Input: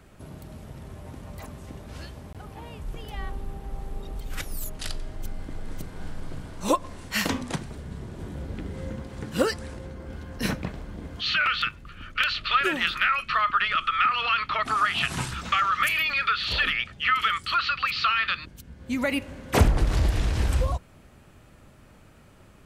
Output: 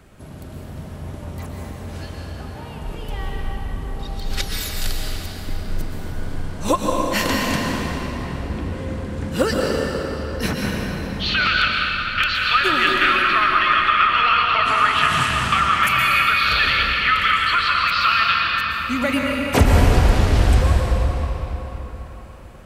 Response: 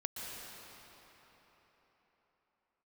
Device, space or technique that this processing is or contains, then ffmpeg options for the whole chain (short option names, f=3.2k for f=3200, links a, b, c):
cathedral: -filter_complex "[0:a]asettb=1/sr,asplit=3[a][b][c];[a]atrim=end=3.994[d];[b]atrim=start=3.99:end=4.72,asetpts=PTS-STARTPTS,afade=t=in:d=0.004:c=qsin,afade=t=out:st=0.726:d=0.004:c=qsin,equalizer=f=4.4k:t=o:w=0.92:g=13[e];[c]atrim=start=4.716[f];[d][e]acrossfade=d=0.004:c1=hsin:c2=qsin[g];[g][f]acrossfade=d=0.004:c1=qsin:c2=hsin[h];[1:a]atrim=start_sample=2205[i];[h][i]afir=irnorm=-1:irlink=0,volume=6.5dB"